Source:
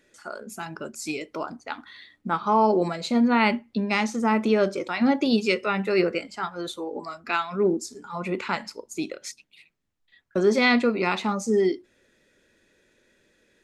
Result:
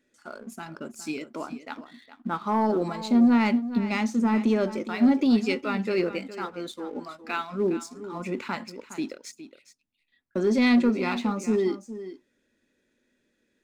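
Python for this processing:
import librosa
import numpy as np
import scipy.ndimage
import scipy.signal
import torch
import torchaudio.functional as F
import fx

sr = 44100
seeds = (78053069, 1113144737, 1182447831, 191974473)

y = fx.peak_eq(x, sr, hz=250.0, db=10.5, octaves=0.46)
y = fx.leveller(y, sr, passes=1)
y = y + 10.0 ** (-13.5 / 20.0) * np.pad(y, (int(413 * sr / 1000.0), 0))[:len(y)]
y = y * librosa.db_to_amplitude(-8.5)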